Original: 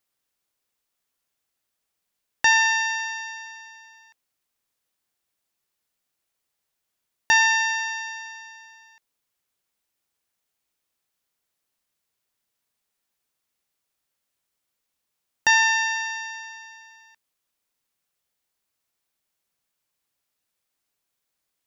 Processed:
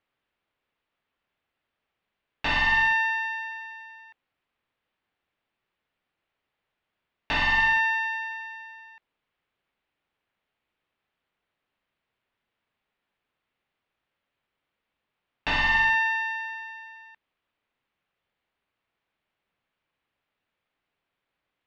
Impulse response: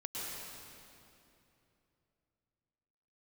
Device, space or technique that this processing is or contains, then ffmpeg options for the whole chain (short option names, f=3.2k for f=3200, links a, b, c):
synthesiser wavefolder: -af "aeval=exprs='0.0944*(abs(mod(val(0)/0.0944+3,4)-2)-1)':c=same,lowpass=f=3.1k:w=0.5412,lowpass=f=3.1k:w=1.3066,volume=5dB"